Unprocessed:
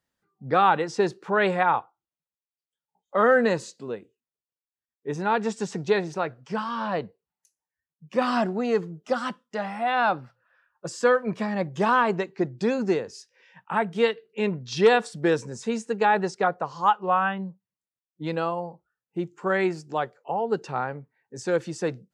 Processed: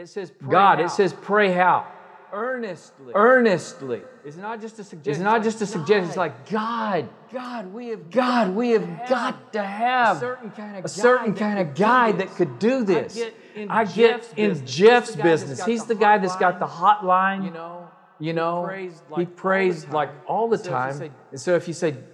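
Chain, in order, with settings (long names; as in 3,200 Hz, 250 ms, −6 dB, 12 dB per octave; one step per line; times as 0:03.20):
backwards echo 824 ms −12 dB
coupled-rooms reverb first 0.4 s, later 3.5 s, from −18 dB, DRR 13 dB
level +4 dB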